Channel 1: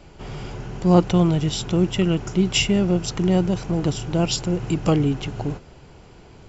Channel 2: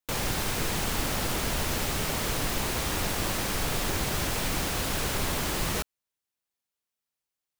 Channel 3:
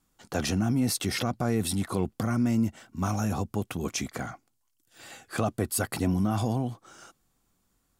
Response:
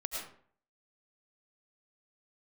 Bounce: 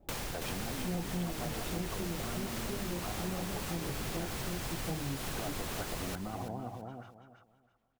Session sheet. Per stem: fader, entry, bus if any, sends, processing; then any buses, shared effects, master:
-9.5 dB, 0.00 s, no send, no echo send, elliptic low-pass 850 Hz; chorus voices 4, 0.69 Hz, delay 26 ms, depth 4.1 ms
-2.0 dB, 0.00 s, no send, echo send -4.5 dB, auto duck -10 dB, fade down 0.45 s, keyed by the first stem
-10.5 dB, 0.00 s, no send, echo send -6 dB, bell 640 Hz +5.5 dB 1.4 oct; compressor, threshold -24 dBFS, peak gain reduction 5.5 dB; LFO low-pass sine 6.7 Hz 610–3300 Hz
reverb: off
echo: feedback echo 0.33 s, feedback 24%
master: compressor 3:1, threshold -35 dBFS, peak gain reduction 10 dB

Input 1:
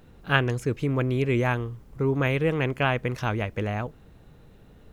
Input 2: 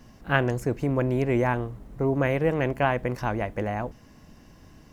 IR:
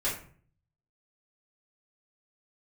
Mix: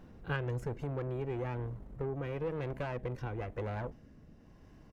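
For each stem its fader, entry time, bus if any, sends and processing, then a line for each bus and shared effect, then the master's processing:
-1.0 dB, 0.00 s, no send, compressor 4:1, threshold -26 dBFS, peak gain reduction 9.5 dB; auto duck -12 dB, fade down 0.80 s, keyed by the second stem
-1.5 dB, 1.2 ms, no send, compressor, threshold -24 dBFS, peak gain reduction 8 dB; rotary speaker horn 1 Hz; tube stage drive 31 dB, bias 0.6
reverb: off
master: high shelf 2700 Hz -11.5 dB

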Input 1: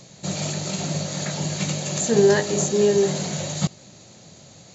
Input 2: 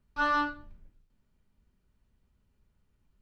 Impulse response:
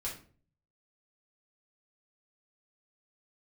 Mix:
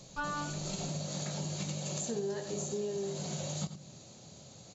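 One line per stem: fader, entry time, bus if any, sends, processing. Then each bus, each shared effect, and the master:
-7.5 dB, 0.00 s, send -10.5 dB, echo send -10.5 dB, dry
+0.5 dB, 0.00 s, no send, no echo send, dry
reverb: on, RT60 0.45 s, pre-delay 4 ms
echo: echo 86 ms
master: bell 1900 Hz -6.5 dB 0.67 oct; compressor 6:1, threshold -34 dBFS, peak gain reduction 16 dB

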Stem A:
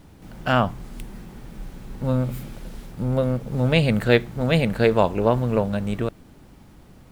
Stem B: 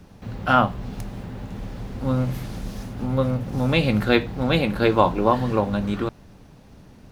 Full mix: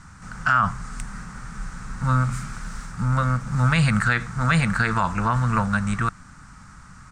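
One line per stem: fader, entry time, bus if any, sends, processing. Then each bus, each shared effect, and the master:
+3.0 dB, 0.00 s, no send, EQ curve 180 Hz 0 dB, 280 Hz -9 dB, 410 Hz -30 dB, 1300 Hz +15 dB, 3200 Hz -6 dB, 5900 Hz +8 dB, 8700 Hz +9 dB, 13000 Hz -29 dB
-12.0 dB, 1.1 ms, no send, HPF 360 Hz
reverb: off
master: limiter -9 dBFS, peak gain reduction 11 dB

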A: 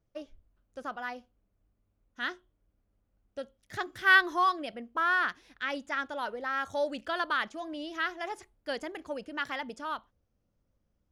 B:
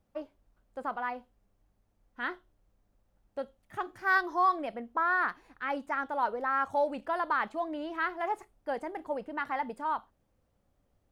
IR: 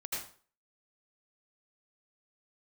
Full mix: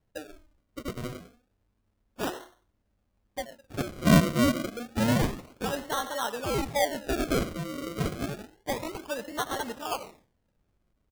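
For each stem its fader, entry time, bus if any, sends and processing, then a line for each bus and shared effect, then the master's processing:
+1.0 dB, 0.00 s, send -10 dB, dry
-9.0 dB, 9 ms, no send, dry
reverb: on, RT60 0.45 s, pre-delay 73 ms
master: decimation with a swept rate 35×, swing 100% 0.29 Hz

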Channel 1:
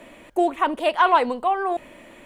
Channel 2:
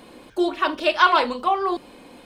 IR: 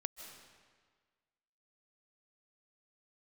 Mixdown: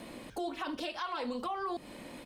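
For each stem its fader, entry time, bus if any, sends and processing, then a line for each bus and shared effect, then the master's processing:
-6.5 dB, 0.00 s, no send, steep low-pass 4400 Hz 48 dB/oct; compressor 2.5:1, threshold -34 dBFS, peak gain reduction 14.5 dB
-5.0 dB, 0.8 ms, no send, HPF 84 Hz 6 dB/oct; tone controls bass +9 dB, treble +6 dB; compressor, threshold -27 dBFS, peak gain reduction 16 dB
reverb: off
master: limiter -28 dBFS, peak gain reduction 7 dB

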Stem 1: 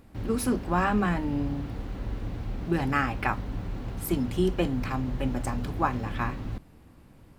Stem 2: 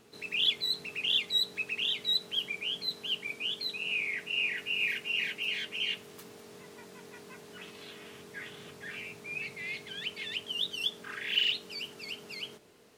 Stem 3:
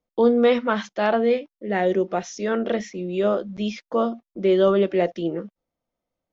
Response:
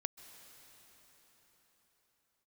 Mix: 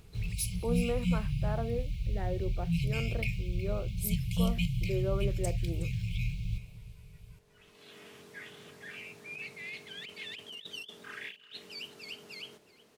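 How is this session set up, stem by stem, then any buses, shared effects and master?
-2.5 dB, 0.00 s, send -5.5 dB, echo send -12 dB, FFT band-reject 190–2100 Hz
-7.5 dB, 0.00 s, no send, echo send -20 dB, negative-ratio compressor -37 dBFS, ratio -0.5; auto duck -20 dB, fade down 1.00 s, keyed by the first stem
-16.0 dB, 0.45 s, no send, no echo send, LPF 1500 Hz; upward compressor, threshold -32 dBFS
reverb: on, pre-delay 0.123 s
echo: echo 0.367 s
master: dry

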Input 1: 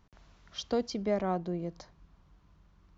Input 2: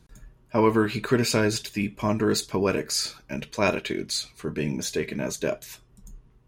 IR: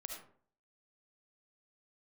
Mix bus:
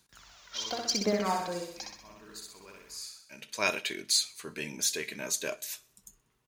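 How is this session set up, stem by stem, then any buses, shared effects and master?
+2.0 dB, 0.00 s, no send, echo send -3.5 dB, phaser 0.95 Hz, delay 2.2 ms, feedback 67%; ending taper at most 160 dB/s
-6.0 dB, 0.00 s, no send, echo send -22.5 dB, high shelf 11000 Hz -5.5 dB; auto duck -21 dB, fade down 0.35 s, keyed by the first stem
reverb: off
echo: feedback echo 63 ms, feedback 51%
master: tilt +4 dB/oct

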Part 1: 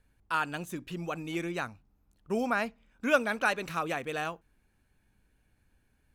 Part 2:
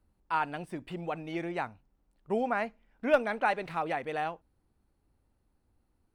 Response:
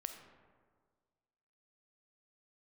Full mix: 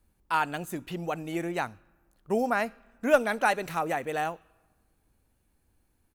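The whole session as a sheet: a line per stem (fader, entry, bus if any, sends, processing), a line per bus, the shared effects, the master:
-0.5 dB, 0.00 s, send -3.5 dB, pre-emphasis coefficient 0.8
+1.5 dB, 0.5 ms, no send, dry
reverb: on, RT60 1.7 s, pre-delay 5 ms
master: dry

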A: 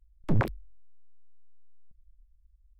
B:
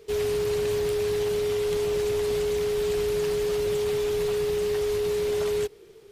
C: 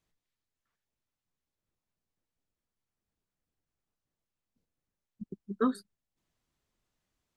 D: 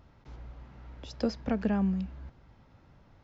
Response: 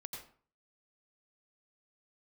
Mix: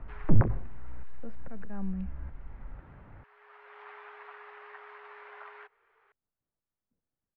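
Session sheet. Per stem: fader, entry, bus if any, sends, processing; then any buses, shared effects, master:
+1.5 dB, 0.00 s, send -7.5 dB, tilt -2 dB/oct
-4.5 dB, 0.00 s, no send, HPF 950 Hz 24 dB/oct; auto duck -21 dB, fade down 1.45 s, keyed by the fourth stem
-14.5 dB, 2.35 s, no send, dry
0.0 dB, 0.00 s, no send, bell 2800 Hz +6.5 dB 1.8 oct; auto swell 0.409 s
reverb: on, RT60 0.45 s, pre-delay 81 ms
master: LPF 1800 Hz 24 dB/oct; three-band squash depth 40%

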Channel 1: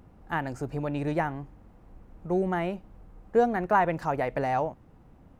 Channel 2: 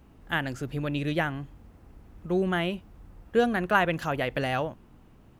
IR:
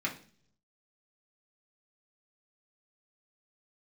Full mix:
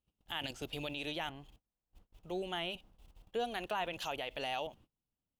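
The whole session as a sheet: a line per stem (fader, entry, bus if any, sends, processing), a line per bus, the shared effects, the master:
-11.5 dB, 0.00 s, no send, dry
-2.0 dB, 0.00 s, polarity flipped, no send, resonant high shelf 2200 Hz +11 dB, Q 3; level quantiser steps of 16 dB; auto duck -7 dB, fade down 1.30 s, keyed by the first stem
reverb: off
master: gate -58 dBFS, range -28 dB; limiter -27 dBFS, peak gain reduction 7 dB

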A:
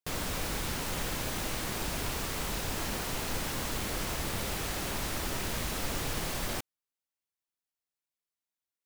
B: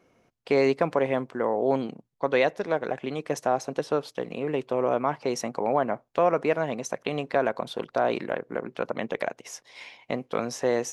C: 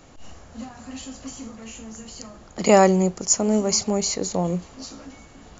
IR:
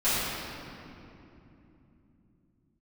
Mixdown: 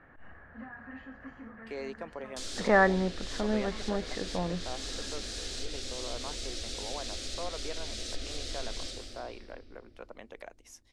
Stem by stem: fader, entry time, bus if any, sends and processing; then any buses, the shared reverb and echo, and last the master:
-11.5 dB, 2.30 s, send -11.5 dB, band shelf 5700 Hz +12 dB; fixed phaser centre 400 Hz, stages 4
-17.5 dB, 1.20 s, no send, HPF 210 Hz; high shelf 5200 Hz +10 dB
+2.5 dB, 0.00 s, no send, ladder low-pass 1800 Hz, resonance 80%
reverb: on, RT60 3.0 s, pre-delay 3 ms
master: treble ducked by the level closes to 2900 Hz, closed at -27.5 dBFS

